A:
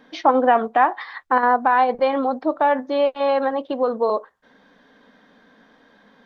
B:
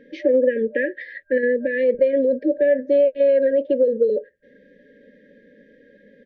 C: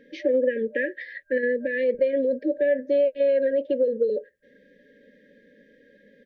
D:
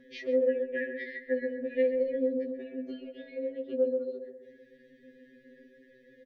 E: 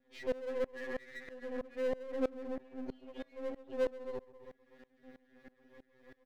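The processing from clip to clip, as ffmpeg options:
-af "afftfilt=real='re*(1-between(b*sr/4096,600,1600))':imag='im*(1-between(b*sr/4096,600,1600))':win_size=4096:overlap=0.75,firequalizer=gain_entry='entry(270,0);entry(560,7);entry(3600,-14)':delay=0.05:min_phase=1,acompressor=threshold=0.158:ratio=6,volume=1.33"
-af "highshelf=f=2500:g=8,volume=0.562"
-filter_complex "[0:a]acompressor=threshold=0.0282:ratio=2.5,asplit=2[s0][s1];[s1]adelay=132,lowpass=f=920:p=1,volume=0.708,asplit=2[s2][s3];[s3]adelay=132,lowpass=f=920:p=1,volume=0.5,asplit=2[s4][s5];[s5]adelay=132,lowpass=f=920:p=1,volume=0.5,asplit=2[s6][s7];[s7]adelay=132,lowpass=f=920:p=1,volume=0.5,asplit=2[s8][s9];[s9]adelay=132,lowpass=f=920:p=1,volume=0.5,asplit=2[s10][s11];[s11]adelay=132,lowpass=f=920:p=1,volume=0.5,asplit=2[s12][s13];[s13]adelay=132,lowpass=f=920:p=1,volume=0.5[s14];[s2][s4][s6][s8][s10][s12][s14]amix=inputs=7:normalize=0[s15];[s0][s15]amix=inputs=2:normalize=0,afftfilt=real='re*2.45*eq(mod(b,6),0)':imag='im*2.45*eq(mod(b,6),0)':win_size=2048:overlap=0.75"
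-af "aeval=exprs='if(lt(val(0),0),0.251*val(0),val(0))':c=same,aeval=exprs='(tanh(20*val(0)+0.6)-tanh(0.6))/20':c=same,aeval=exprs='val(0)*pow(10,-24*if(lt(mod(-3.1*n/s,1),2*abs(-3.1)/1000),1-mod(-3.1*n/s,1)/(2*abs(-3.1)/1000),(mod(-3.1*n/s,1)-2*abs(-3.1)/1000)/(1-2*abs(-3.1)/1000))/20)':c=same,volume=3.16"

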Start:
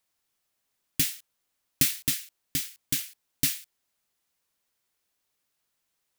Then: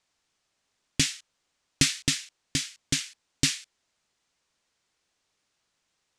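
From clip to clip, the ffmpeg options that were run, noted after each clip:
-af "lowpass=f=7700:w=0.5412,lowpass=f=7700:w=1.3066,volume=1.88"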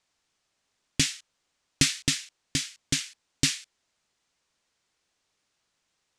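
-af anull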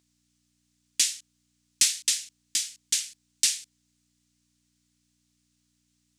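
-af "aeval=exprs='val(0)+0.00708*(sin(2*PI*60*n/s)+sin(2*PI*2*60*n/s)/2+sin(2*PI*3*60*n/s)/3+sin(2*PI*4*60*n/s)/4+sin(2*PI*5*60*n/s)/5)':c=same,aderivative,volume=1.78"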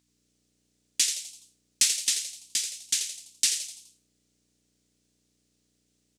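-filter_complex "[0:a]asplit=6[s0][s1][s2][s3][s4][s5];[s1]adelay=84,afreqshift=150,volume=0.398[s6];[s2]adelay=168,afreqshift=300,volume=0.184[s7];[s3]adelay=252,afreqshift=450,volume=0.0841[s8];[s4]adelay=336,afreqshift=600,volume=0.0389[s9];[s5]adelay=420,afreqshift=750,volume=0.0178[s10];[s0][s6][s7][s8][s9][s10]amix=inputs=6:normalize=0,volume=0.891"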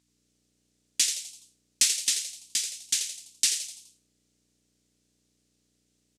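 -af "aresample=32000,aresample=44100"

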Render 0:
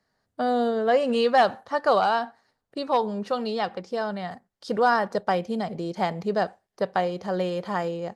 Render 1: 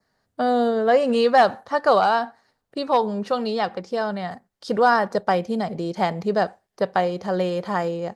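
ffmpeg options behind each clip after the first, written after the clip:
-af "adynamicequalizer=threshold=0.00355:dfrequency=3000:dqfactor=2.6:tfrequency=3000:tqfactor=2.6:attack=5:release=100:ratio=0.375:range=2:mode=cutabove:tftype=bell,volume=1.5"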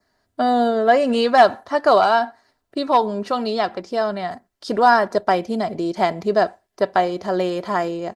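-af "aecho=1:1:3:0.47,volume=1.33"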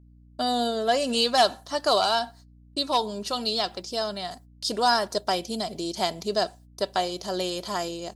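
-af "aexciter=amount=4.5:drive=7.4:freq=2900,agate=range=0.0158:threshold=0.01:ratio=16:detection=peak,aeval=exprs='val(0)+0.00708*(sin(2*PI*60*n/s)+sin(2*PI*2*60*n/s)/2+sin(2*PI*3*60*n/s)/3+sin(2*PI*4*60*n/s)/4+sin(2*PI*5*60*n/s)/5)':c=same,volume=0.376"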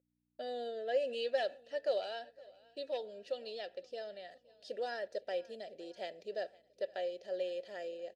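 -filter_complex "[0:a]asplit=3[s0][s1][s2];[s0]bandpass=f=530:t=q:w=8,volume=1[s3];[s1]bandpass=f=1840:t=q:w=8,volume=0.501[s4];[s2]bandpass=f=2480:t=q:w=8,volume=0.355[s5];[s3][s4][s5]amix=inputs=3:normalize=0,aecho=1:1:516|1032|1548|2064:0.0668|0.0381|0.0217|0.0124,volume=0.75"

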